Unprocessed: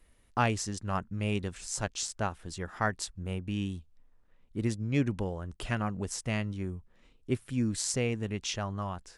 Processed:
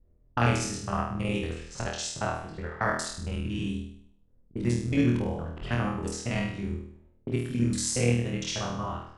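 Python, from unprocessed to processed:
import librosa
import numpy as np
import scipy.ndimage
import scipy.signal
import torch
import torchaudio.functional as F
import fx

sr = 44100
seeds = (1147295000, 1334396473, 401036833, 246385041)

p1 = fx.local_reverse(x, sr, ms=46.0)
p2 = fx.env_lowpass(p1, sr, base_hz=360.0, full_db=-29.5)
y = p2 + fx.room_flutter(p2, sr, wall_m=4.3, rt60_s=0.64, dry=0)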